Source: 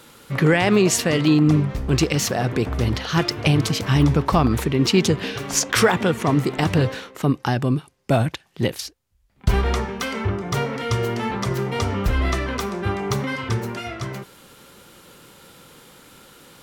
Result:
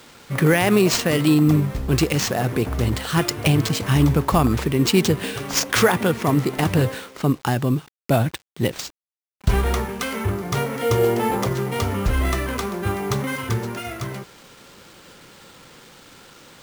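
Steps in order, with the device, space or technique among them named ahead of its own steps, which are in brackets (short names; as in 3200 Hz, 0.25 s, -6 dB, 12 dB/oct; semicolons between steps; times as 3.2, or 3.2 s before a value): 10.82–11.48 thirty-one-band EQ 315 Hz +11 dB, 500 Hz +10 dB, 800 Hz +8 dB; early 8-bit sampler (sample-rate reducer 12000 Hz, jitter 0%; bit-crush 8-bit)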